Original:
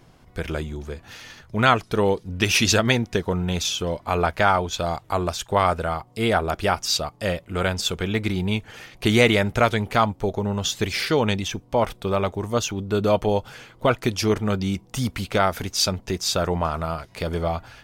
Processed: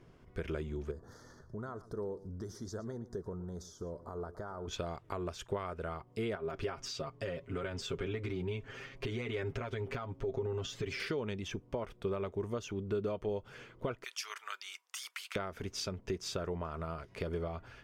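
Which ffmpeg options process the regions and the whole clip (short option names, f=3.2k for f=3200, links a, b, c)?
-filter_complex "[0:a]asettb=1/sr,asplit=3[a][b][c];[a]atrim=end=0.914[d];[b]atrim=start=0.91:end=4.68,asetpts=PTS-STARTPTS,afade=t=in:d=0.004:c=qsin,afade=t=out:st=3.766:d=0.004:c=qsin,acompressor=threshold=-35dB:ratio=3:attack=3.2:release=140:knee=1:detection=peak,asuperstop=centerf=2600:order=4:qfactor=0.71,aecho=1:1:115:0.15,atrim=end_sample=166257[e];[c]atrim=start=4.676[f];[d][e]acrossfade=d=0.004:c1=hsin:c2=qsin[g];[g][f]acrossfade=d=0.004:c1=qsin:c2=hsin,asettb=1/sr,asplit=3[h][i][j];[h]atrim=end=6.354[k];[i]atrim=start=6.35:end=11,asetpts=PTS-STARTPTS,afade=t=in:d=0.004:c=qsin,afade=t=out:st=4.646:d=0.004:c=qsin,equalizer=f=11k:t=o:w=0.58:g=-8.5,aecho=1:1:7.4:0.89,atrim=end_sample=205065,acompressor=threshold=-24dB:ratio=6:attack=3.2:release=140:knee=1:detection=peak[l];[j]atrim=start=10.996[m];[k][l]acrossfade=d=0.004:c1=hsin:c2=qsin[n];[n][m]acrossfade=d=0.004:c1=qsin:c2=hsin,asettb=1/sr,asplit=3[o][p][q];[o]atrim=end=14.044[r];[p]atrim=start=14.04:end=15.36,asetpts=PTS-STARTPTS,afade=t=in:d=0.004:c=qsin,afade=t=out:st=1.316:d=0.004:c=qsin,highpass=f=1.1k:w=0.5412,highpass=f=1.1k:w=1.3066,aemphasis=mode=production:type=cd[s];[q]atrim=start=15.356[t];[r][s]acrossfade=d=0.004:c1=hsin:c2=qsin[u];[u][t]acrossfade=d=0.004:c1=qsin:c2=hsin,aemphasis=mode=reproduction:type=50kf,acompressor=threshold=-28dB:ratio=6,equalizer=f=400:t=o:w=0.33:g=7,equalizer=f=800:t=o:w=0.33:g=-7,equalizer=f=4k:t=o:w=0.33:g=-5,volume=-7dB"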